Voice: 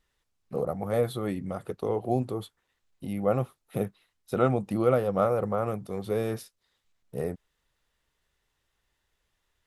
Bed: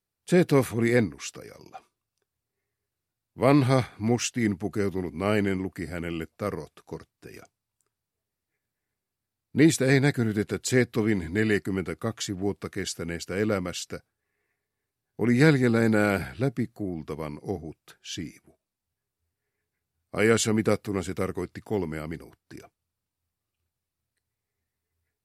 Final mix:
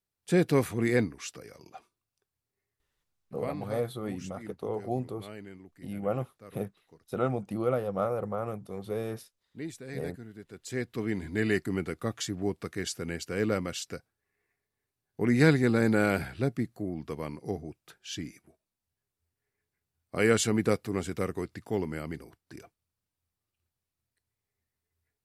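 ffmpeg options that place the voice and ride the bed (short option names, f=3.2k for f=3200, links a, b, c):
-filter_complex "[0:a]adelay=2800,volume=-5dB[a];[1:a]volume=14dB,afade=t=out:st=3.04:d=0.49:silence=0.149624,afade=t=in:st=10.47:d=1.14:silence=0.133352[b];[a][b]amix=inputs=2:normalize=0"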